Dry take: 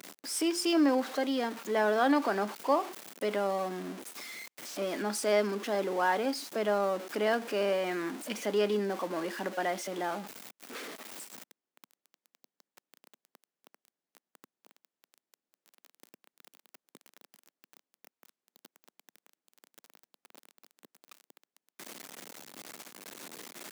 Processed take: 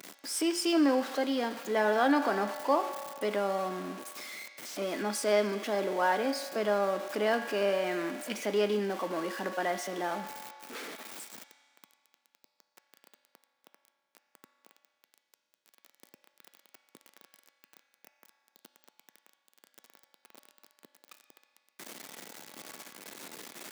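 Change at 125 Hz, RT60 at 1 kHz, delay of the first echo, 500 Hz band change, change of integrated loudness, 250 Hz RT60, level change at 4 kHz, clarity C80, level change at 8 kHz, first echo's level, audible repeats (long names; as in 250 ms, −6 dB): 0.0 dB, 2.1 s, no echo audible, +0.5 dB, +0.5 dB, 2.1 s, +0.5 dB, 9.5 dB, 0.0 dB, no echo audible, no echo audible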